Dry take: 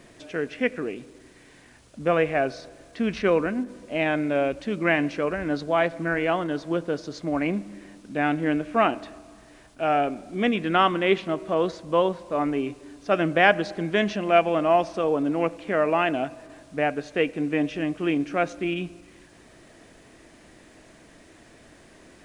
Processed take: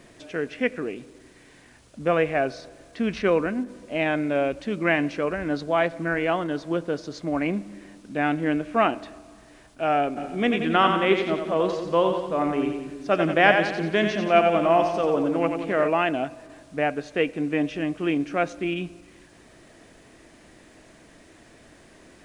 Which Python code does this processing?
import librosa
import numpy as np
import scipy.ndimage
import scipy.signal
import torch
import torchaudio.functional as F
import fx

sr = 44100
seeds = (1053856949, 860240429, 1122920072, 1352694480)

y = fx.echo_split(x, sr, split_hz=360.0, low_ms=195, high_ms=89, feedback_pct=52, wet_db=-6.0, at=(10.16, 15.87), fade=0.02)